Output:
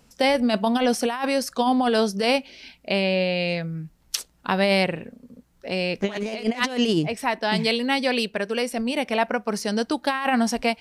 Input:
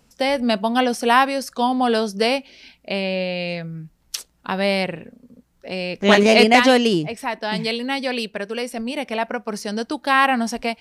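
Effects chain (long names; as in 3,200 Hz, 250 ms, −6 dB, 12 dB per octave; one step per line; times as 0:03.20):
compressor whose output falls as the input rises −19 dBFS, ratio −0.5
level −1 dB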